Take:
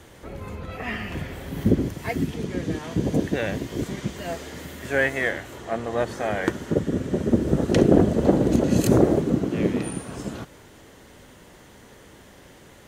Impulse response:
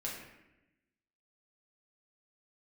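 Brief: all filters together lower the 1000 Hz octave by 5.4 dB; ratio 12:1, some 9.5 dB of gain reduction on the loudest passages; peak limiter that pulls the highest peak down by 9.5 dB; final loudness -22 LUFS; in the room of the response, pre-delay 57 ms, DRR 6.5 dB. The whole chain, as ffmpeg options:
-filter_complex "[0:a]equalizer=f=1k:t=o:g=-8.5,acompressor=threshold=-22dB:ratio=12,alimiter=limit=-20dB:level=0:latency=1,asplit=2[a][b];[1:a]atrim=start_sample=2205,adelay=57[c];[b][c]afir=irnorm=-1:irlink=0,volume=-8dB[d];[a][d]amix=inputs=2:normalize=0,volume=9dB"

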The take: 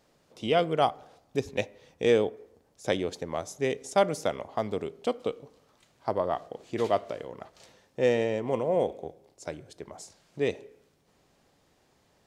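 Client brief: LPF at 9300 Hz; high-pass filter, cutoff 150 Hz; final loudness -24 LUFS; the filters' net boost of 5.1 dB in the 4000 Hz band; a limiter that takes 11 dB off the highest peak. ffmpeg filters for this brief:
-af "highpass=150,lowpass=9.3k,equalizer=f=4k:t=o:g=7,volume=10.5dB,alimiter=limit=-10dB:level=0:latency=1"

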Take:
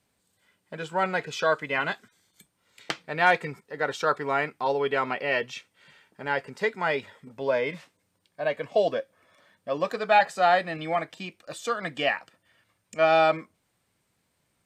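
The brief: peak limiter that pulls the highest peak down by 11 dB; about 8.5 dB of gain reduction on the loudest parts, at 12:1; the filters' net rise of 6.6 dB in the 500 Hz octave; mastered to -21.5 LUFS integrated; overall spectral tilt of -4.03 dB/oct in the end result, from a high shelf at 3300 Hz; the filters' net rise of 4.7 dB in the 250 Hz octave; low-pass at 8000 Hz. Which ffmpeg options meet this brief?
-af "lowpass=8k,equalizer=f=250:t=o:g=3.5,equalizer=f=500:t=o:g=7.5,highshelf=f=3.3k:g=8,acompressor=threshold=-19dB:ratio=12,volume=7dB,alimiter=limit=-9.5dB:level=0:latency=1"

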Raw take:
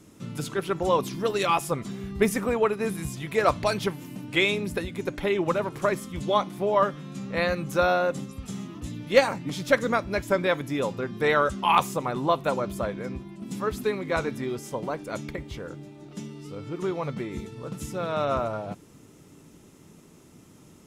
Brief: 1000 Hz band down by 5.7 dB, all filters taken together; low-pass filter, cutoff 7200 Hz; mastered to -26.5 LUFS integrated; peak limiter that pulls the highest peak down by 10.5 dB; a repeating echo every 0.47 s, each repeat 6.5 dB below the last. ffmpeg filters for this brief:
-af "lowpass=7.2k,equalizer=f=1k:t=o:g=-7.5,alimiter=limit=-17dB:level=0:latency=1,aecho=1:1:470|940|1410|1880|2350|2820:0.473|0.222|0.105|0.0491|0.0231|0.0109,volume=3dB"

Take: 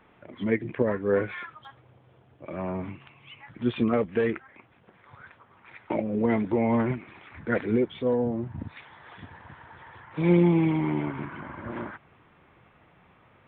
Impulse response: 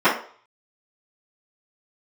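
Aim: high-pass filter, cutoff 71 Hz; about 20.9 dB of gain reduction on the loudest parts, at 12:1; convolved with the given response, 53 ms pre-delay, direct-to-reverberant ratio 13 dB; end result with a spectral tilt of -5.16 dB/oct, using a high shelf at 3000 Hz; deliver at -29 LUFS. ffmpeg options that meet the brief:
-filter_complex "[0:a]highpass=71,highshelf=f=3k:g=4.5,acompressor=threshold=-37dB:ratio=12,asplit=2[a][b];[1:a]atrim=start_sample=2205,adelay=53[c];[b][c]afir=irnorm=-1:irlink=0,volume=-35.5dB[d];[a][d]amix=inputs=2:normalize=0,volume=14dB"

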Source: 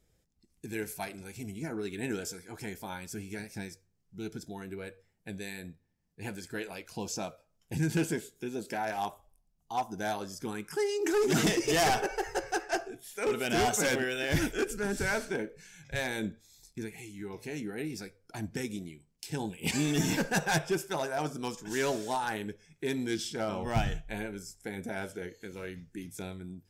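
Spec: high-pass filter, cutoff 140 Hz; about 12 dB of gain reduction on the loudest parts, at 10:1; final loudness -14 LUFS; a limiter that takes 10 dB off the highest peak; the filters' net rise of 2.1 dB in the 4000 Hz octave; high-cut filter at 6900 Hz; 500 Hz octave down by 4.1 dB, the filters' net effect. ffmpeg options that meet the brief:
-af "highpass=140,lowpass=6.9k,equalizer=f=500:t=o:g=-5.5,equalizer=f=4k:t=o:g=3.5,acompressor=threshold=-36dB:ratio=10,volume=29dB,alimiter=limit=-1.5dB:level=0:latency=1"

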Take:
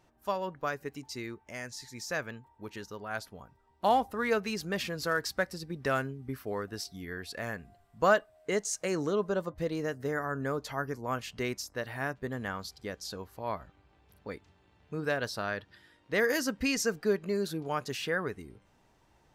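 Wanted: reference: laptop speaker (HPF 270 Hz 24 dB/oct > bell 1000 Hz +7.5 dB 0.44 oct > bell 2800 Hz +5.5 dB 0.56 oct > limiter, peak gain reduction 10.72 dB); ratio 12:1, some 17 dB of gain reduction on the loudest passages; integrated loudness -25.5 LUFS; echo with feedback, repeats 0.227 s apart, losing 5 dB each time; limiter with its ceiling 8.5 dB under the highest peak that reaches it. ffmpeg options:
-af "acompressor=threshold=-37dB:ratio=12,alimiter=level_in=8.5dB:limit=-24dB:level=0:latency=1,volume=-8.5dB,highpass=f=270:w=0.5412,highpass=f=270:w=1.3066,equalizer=f=1k:t=o:w=0.44:g=7.5,equalizer=f=2.8k:t=o:w=0.56:g=5.5,aecho=1:1:227|454|681|908|1135|1362|1589:0.562|0.315|0.176|0.0988|0.0553|0.031|0.0173,volume=20.5dB,alimiter=limit=-16dB:level=0:latency=1"

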